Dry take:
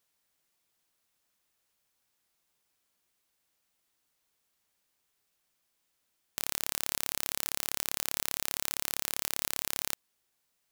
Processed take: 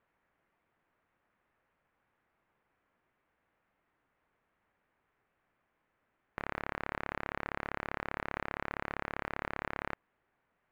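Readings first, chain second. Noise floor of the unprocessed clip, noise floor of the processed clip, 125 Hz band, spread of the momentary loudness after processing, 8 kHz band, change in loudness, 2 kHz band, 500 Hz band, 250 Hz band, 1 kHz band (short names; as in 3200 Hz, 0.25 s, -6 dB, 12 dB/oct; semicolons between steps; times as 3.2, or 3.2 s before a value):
-78 dBFS, -80 dBFS, +5.5 dB, 3 LU, under -35 dB, -7.5 dB, +2.5 dB, +5.5 dB, +5.5 dB, +5.5 dB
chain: LPF 2000 Hz 24 dB/oct; in parallel at -3 dB: soft clip -37.5 dBFS, distortion -6 dB; on the sum: gain +4 dB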